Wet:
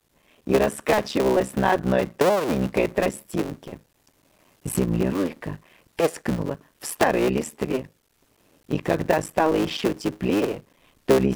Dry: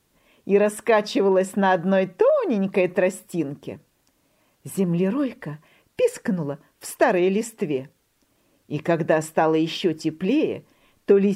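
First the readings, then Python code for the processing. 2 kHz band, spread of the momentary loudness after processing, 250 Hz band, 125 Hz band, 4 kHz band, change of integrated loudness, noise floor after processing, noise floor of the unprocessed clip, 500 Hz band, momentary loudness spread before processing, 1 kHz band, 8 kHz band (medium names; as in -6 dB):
-0.5 dB, 14 LU, -1.5 dB, -0.5 dB, +1.0 dB, -1.5 dB, -65 dBFS, -67 dBFS, -2.0 dB, 15 LU, 0.0 dB, +2.5 dB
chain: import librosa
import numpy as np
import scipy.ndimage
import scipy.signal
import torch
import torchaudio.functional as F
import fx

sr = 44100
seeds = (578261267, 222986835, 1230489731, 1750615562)

y = fx.cycle_switch(x, sr, every=3, mode='muted')
y = fx.recorder_agc(y, sr, target_db=-13.5, rise_db_per_s=6.2, max_gain_db=30)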